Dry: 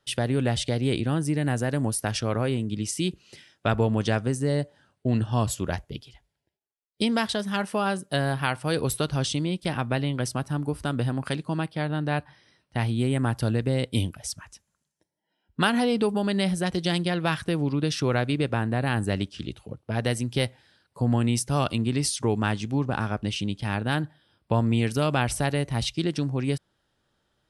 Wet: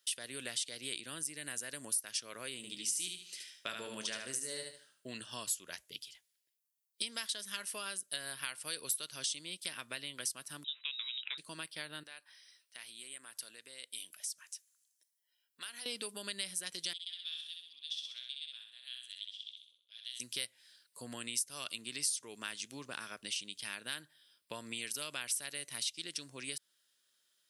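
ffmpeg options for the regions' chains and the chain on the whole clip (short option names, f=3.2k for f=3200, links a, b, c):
-filter_complex "[0:a]asettb=1/sr,asplit=3[a][b][c];[a]atrim=end=2.564[d];[b]atrim=start=2.56:end=5.08,asetpts=PTS-STARTPTS,afade=t=in:d=0.004:c=qsin,afade=t=out:st=2.516:d=0.004:c=qsin,asplit=2[e][f];[f]adelay=23,volume=-11dB[g];[e][g]amix=inputs=2:normalize=0,atrim=end_sample=111132,aecho=1:1:74|148|222|296:0.562|0.157|0.0441|0.0123,atrim=end_sample=111132[h];[c]atrim=start=5.076[i];[d][h]acrossfade=d=0.004:c1=hsin:c2=qsin[j];[j][i]acrossfade=d=0.004:c1=qsin:c2=hsin,asettb=1/sr,asplit=3[k][l][m];[k]atrim=end=10.644[n];[l]atrim=start=10.64:end=11.38,asetpts=PTS-STARTPTS,afade=t=in:d=0.004:c=qsin,afade=t=out:st=0.736:d=0.004:c=qsin,highpass=f=920:p=1,lowpass=f=3.4k:t=q:w=0.5098,lowpass=f=3.4k:t=q:w=0.6013,lowpass=f=3.4k:t=q:w=0.9,lowpass=f=3.4k:t=q:w=2.563,afreqshift=-4000[o];[m]atrim=start=11.376[p];[n][o]acrossfade=d=0.004:c1=hsin:c2=qsin[q];[q][p]acrossfade=d=0.004:c1=qsin:c2=hsin,asettb=1/sr,asplit=3[r][s][t];[r]atrim=end=12.034[u];[s]atrim=start=12.03:end=15.86,asetpts=PTS-STARTPTS,afade=t=in:d=0.004:c=qsin,afade=t=out:st=3.826:d=0.004:c=qsin,highpass=f=600:p=1,acompressor=threshold=-47dB:ratio=2:attack=3.2:release=140:knee=1:detection=peak[v];[t]atrim=start=15.856[w];[u][v]acrossfade=d=0.004:c1=hsin:c2=qsin[x];[x][w]acrossfade=d=0.004:c1=qsin:c2=hsin,asettb=1/sr,asplit=3[y][z][aa];[y]atrim=end=16.934[ab];[z]atrim=start=16.93:end=20.2,asetpts=PTS-STARTPTS,afade=t=in:d=0.004:c=qsin,afade=t=out:st=3.266:d=0.004:c=qsin,bandpass=f=3.4k:t=q:w=15,aemphasis=mode=production:type=cd,aecho=1:1:64|128|192|256|320|384:0.631|0.309|0.151|0.0742|0.0364|0.0178,atrim=end_sample=144207[ac];[aa]atrim=start=20.196[ad];[ab][ac]acrossfade=d=0.004:c1=hsin:c2=qsin[ae];[ae][ad]acrossfade=d=0.004:c1=qsin:c2=hsin,aderivative,acompressor=threshold=-45dB:ratio=2.5,equalizer=f=100:t=o:w=0.33:g=-10,equalizer=f=800:t=o:w=0.33:g=-12,equalizer=f=1.25k:t=o:w=0.33:g=-3,volume=7dB"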